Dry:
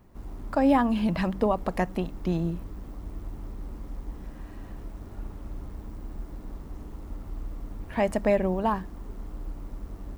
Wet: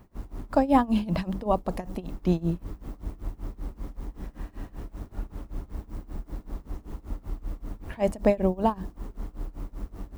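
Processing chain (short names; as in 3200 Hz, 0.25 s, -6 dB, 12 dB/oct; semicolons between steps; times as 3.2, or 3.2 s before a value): dynamic EQ 1800 Hz, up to -7 dB, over -44 dBFS, Q 0.96; tremolo 5.2 Hz, depth 92%; gain +5 dB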